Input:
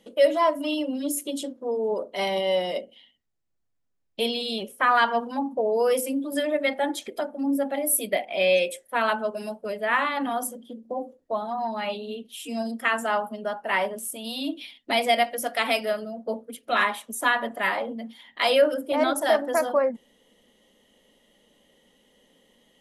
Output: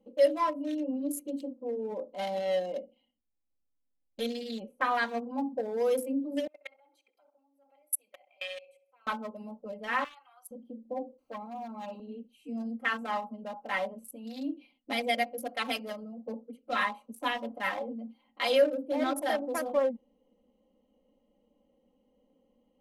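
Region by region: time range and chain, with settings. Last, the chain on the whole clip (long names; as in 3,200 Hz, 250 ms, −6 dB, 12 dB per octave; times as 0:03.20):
0:06.47–0:09.07: output level in coarse steps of 21 dB + high-pass filter 1,500 Hz + feedback echo with a low-pass in the loop 65 ms, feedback 55%, low-pass 2,900 Hz, level −14 dB
0:10.04–0:10.51: high-pass filter 1,400 Hz 24 dB per octave + high-shelf EQ 2,900 Hz −3 dB
0:11.18–0:12.00: high-pass filter 130 Hz 24 dB per octave + bit-depth reduction 10 bits, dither triangular + saturating transformer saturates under 1,200 Hz
whole clip: adaptive Wiener filter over 25 samples; high-shelf EQ 8,600 Hz +3.5 dB; comb filter 3.8 ms, depth 75%; level −8 dB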